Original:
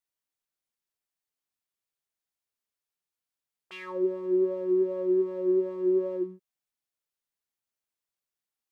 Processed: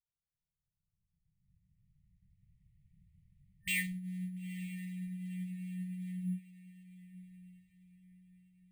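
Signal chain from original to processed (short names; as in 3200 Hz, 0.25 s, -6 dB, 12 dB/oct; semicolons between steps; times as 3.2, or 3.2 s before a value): Doppler pass-by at 3.1, 5 m/s, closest 3.7 m; recorder AGC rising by 20 dB/s; low-pass opened by the level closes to 380 Hz, open at -29 dBFS; low shelf 280 Hz +12 dB; limiter -25.5 dBFS, peak gain reduction 11 dB; FFT band-reject 200–1800 Hz; on a send: diffused feedback echo 0.934 s, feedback 41%, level -16 dB; on the sum: careless resampling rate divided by 4×, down filtered, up hold; gain +6 dB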